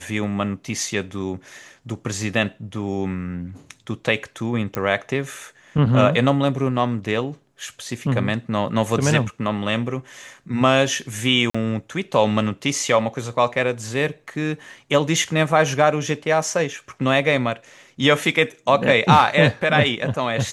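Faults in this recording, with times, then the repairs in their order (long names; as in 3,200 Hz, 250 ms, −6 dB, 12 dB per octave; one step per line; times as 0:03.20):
0:04.75: click −11 dBFS
0:11.50–0:11.54: drop-out 45 ms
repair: click removal
repair the gap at 0:11.50, 45 ms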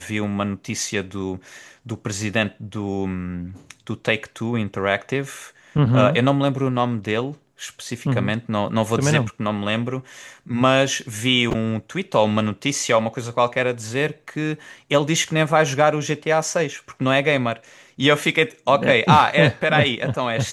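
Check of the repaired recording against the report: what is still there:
none of them is left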